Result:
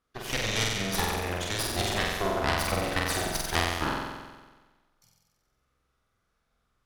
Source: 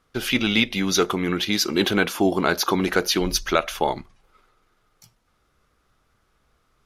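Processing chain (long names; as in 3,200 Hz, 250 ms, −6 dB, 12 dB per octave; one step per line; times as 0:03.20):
harmonic generator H 3 −7 dB, 6 −17 dB, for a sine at −3 dBFS
flutter between parallel walls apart 7.9 metres, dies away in 1.3 s
level −4 dB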